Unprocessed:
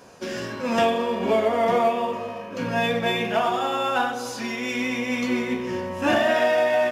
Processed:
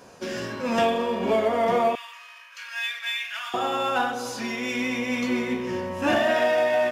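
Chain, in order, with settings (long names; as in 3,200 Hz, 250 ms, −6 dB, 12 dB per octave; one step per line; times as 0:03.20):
0:01.95–0:03.54: high-pass filter 1,500 Hz 24 dB per octave
in parallel at −11 dB: soft clipping −23.5 dBFS, distortion −9 dB
on the sum: level −2.5 dB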